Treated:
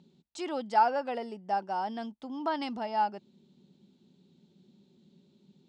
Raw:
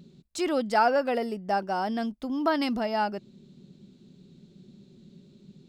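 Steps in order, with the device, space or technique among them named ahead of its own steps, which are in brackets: car door speaker (cabinet simulation 96–8500 Hz, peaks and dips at 130 Hz -8 dB, 870 Hz +10 dB, 3.2 kHz +4 dB); trim -8.5 dB

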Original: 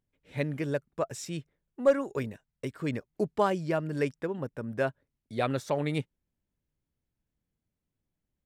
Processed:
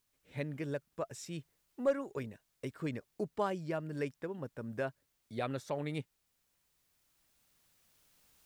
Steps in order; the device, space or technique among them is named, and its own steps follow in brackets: cheap recorder with automatic gain (white noise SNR 40 dB; recorder AGC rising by 5.4 dB/s); trim -8 dB

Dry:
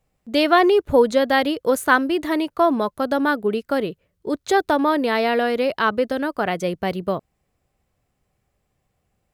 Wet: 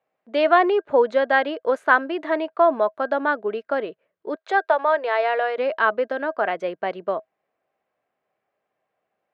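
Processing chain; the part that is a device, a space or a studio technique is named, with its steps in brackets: 4.35–5.58 s: high-pass 430 Hz 24 dB/octave; tin-can telephone (band-pass 450–2200 Hz; small resonant body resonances 640/1600 Hz, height 9 dB, ringing for 95 ms)

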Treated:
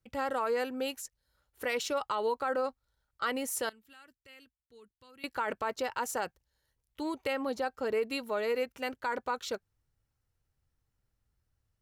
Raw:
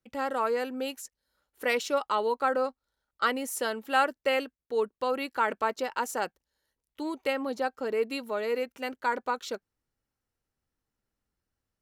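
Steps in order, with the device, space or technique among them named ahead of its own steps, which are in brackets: car stereo with a boomy subwoofer (resonant low shelf 160 Hz +8.5 dB, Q 1.5; peak limiter -22.5 dBFS, peak gain reduction 9.5 dB); 3.69–5.24 s: amplifier tone stack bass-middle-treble 6-0-2

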